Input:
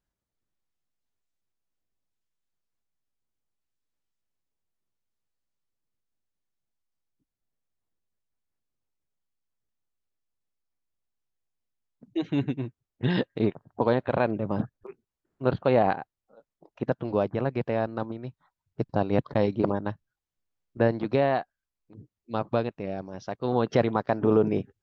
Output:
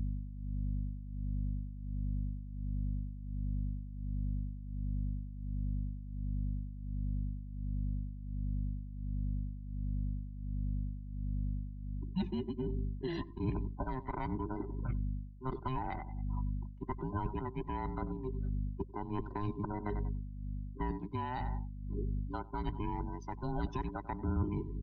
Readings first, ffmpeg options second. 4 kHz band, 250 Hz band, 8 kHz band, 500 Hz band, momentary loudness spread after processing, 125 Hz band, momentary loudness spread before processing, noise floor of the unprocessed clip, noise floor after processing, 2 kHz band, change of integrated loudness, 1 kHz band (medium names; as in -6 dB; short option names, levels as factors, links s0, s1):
-13.0 dB, -9.0 dB, no reading, -17.5 dB, 5 LU, -2.5 dB, 12 LU, under -85 dBFS, -46 dBFS, -14.0 dB, -12.0 dB, -9.0 dB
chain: -filter_complex "[0:a]afftfilt=real='real(if(between(b,1,1008),(2*floor((b-1)/24)+1)*24-b,b),0)':imag='imag(if(between(b,1,1008),(2*floor((b-1)/24)+1)*24-b,b),0)*if(between(b,1,1008),-1,1)':win_size=2048:overlap=0.75,aecho=1:1:94|188|282:0.133|0.0467|0.0163,aeval=exprs='val(0)+0.0112*(sin(2*PI*50*n/s)+sin(2*PI*2*50*n/s)/2+sin(2*PI*3*50*n/s)/3+sin(2*PI*4*50*n/s)/4+sin(2*PI*5*50*n/s)/5)':c=same,tremolo=f=1.4:d=0.76,areverse,acompressor=threshold=0.0112:ratio=5,areverse,afftdn=nr=19:nf=-57,aemphasis=mode=production:type=50fm,acrossover=split=180|3000[s0][s1][s2];[s1]acompressor=threshold=0.00631:ratio=6[s3];[s0][s3][s2]amix=inputs=3:normalize=0,highshelf=f=2100:g=-6,volume=2.66"